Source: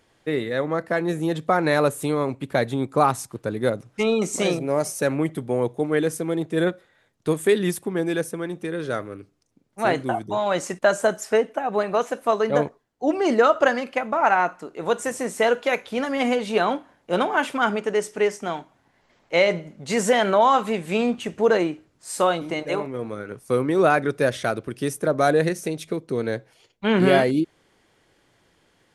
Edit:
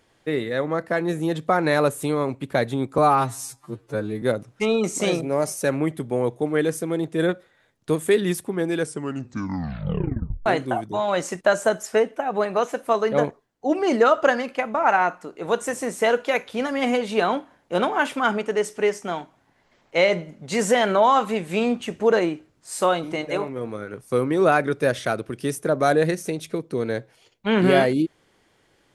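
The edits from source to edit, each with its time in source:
0:02.98–0:03.60: time-stretch 2×
0:08.16: tape stop 1.68 s

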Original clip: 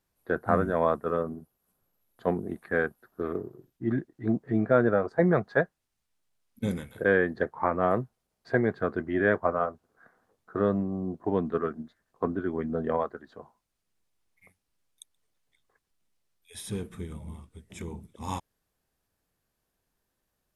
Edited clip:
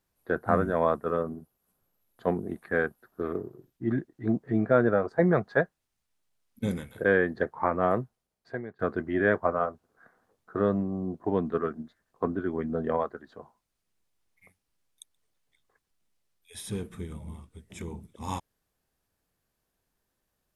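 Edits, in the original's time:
0:07.90–0:08.79: fade out, to −24 dB

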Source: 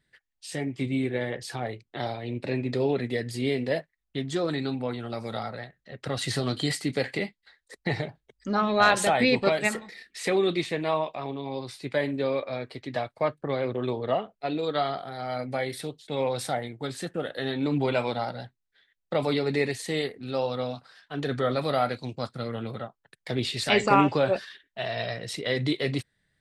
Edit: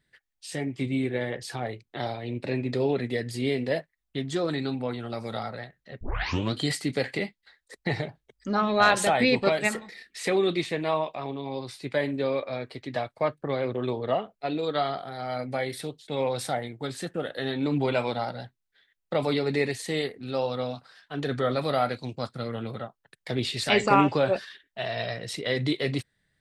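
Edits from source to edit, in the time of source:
0:06.01: tape start 0.52 s

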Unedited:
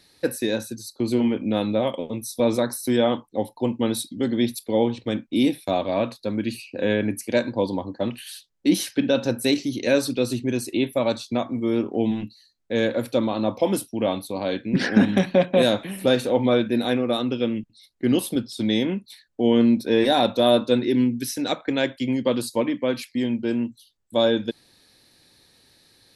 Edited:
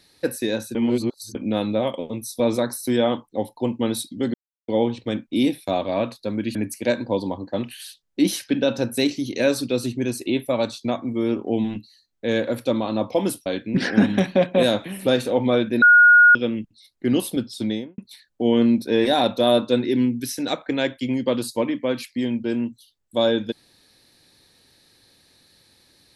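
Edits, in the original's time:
0:00.75–0:01.35: reverse
0:04.34–0:04.68: silence
0:06.55–0:07.02: remove
0:13.93–0:14.45: remove
0:16.81–0:17.34: beep over 1,440 Hz −8 dBFS
0:18.57–0:18.97: fade out and dull

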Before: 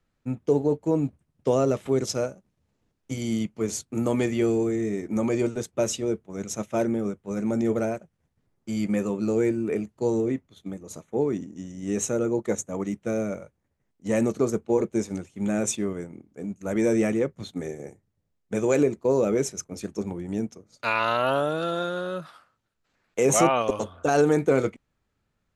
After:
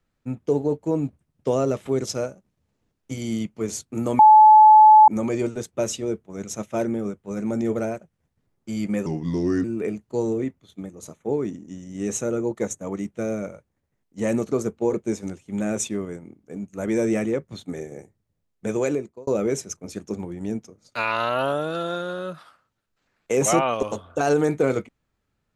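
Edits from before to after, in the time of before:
0:04.19–0:05.08: beep over 861 Hz −7 dBFS
0:09.06–0:09.52: play speed 79%
0:18.63–0:19.15: fade out

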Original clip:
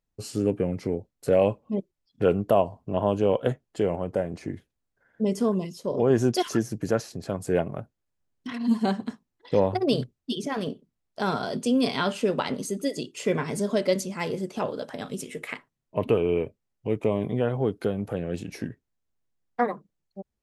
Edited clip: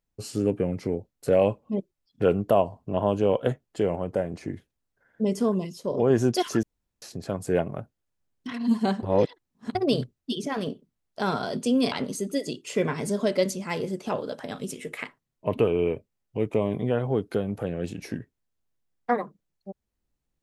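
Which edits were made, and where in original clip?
0:06.63–0:07.02: fill with room tone
0:09.03–0:09.75: reverse
0:11.92–0:12.42: remove

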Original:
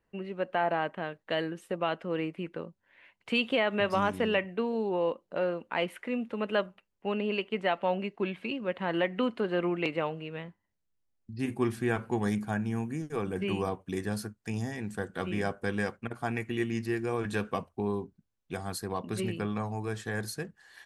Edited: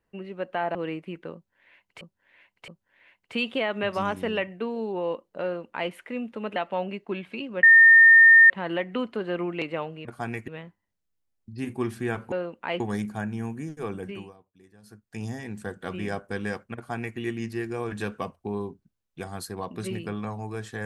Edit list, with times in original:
0:00.75–0:02.06: remove
0:02.65–0:03.32: repeat, 3 plays
0:05.40–0:05.88: duplicate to 0:12.13
0:06.53–0:07.67: remove
0:08.74: insert tone 1,820 Hz −9.5 dBFS 0.87 s
0:13.24–0:14.58: duck −22.5 dB, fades 0.43 s
0:16.08–0:16.51: duplicate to 0:10.29

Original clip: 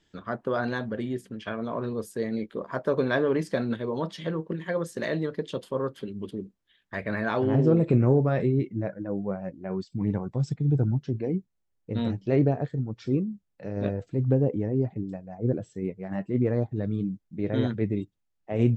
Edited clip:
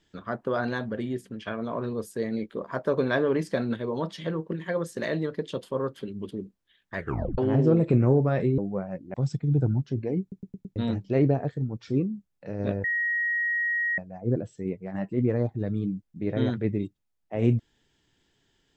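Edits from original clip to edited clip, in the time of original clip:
0:06.97: tape stop 0.41 s
0:08.58–0:09.11: remove
0:09.67–0:10.31: remove
0:11.38: stutter in place 0.11 s, 5 plays
0:14.01–0:15.15: beep over 1,890 Hz −23.5 dBFS

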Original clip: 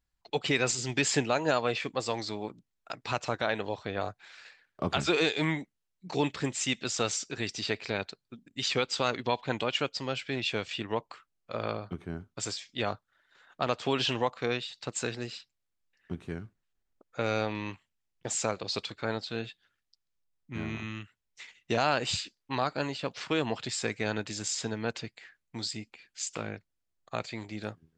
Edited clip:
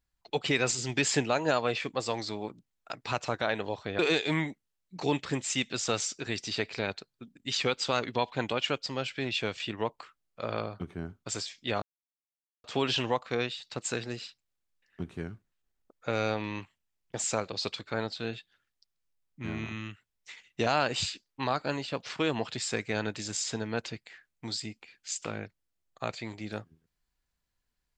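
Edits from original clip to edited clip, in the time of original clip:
0:03.99–0:05.10: remove
0:12.93–0:13.75: silence

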